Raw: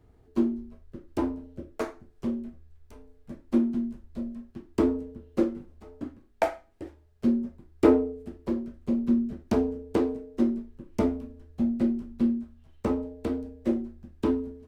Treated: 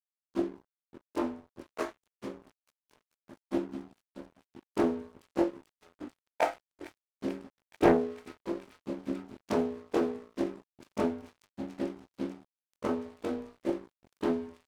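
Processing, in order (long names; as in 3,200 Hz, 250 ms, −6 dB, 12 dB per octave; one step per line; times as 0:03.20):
every overlapping window played backwards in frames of 47 ms
high-pass filter 460 Hz 6 dB per octave
on a send: delay with a high-pass on its return 439 ms, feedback 81%, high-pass 1,800 Hz, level −11.5 dB
on the sum: dead-zone distortion −52.5 dBFS
highs frequency-modulated by the lows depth 0.5 ms
level +4 dB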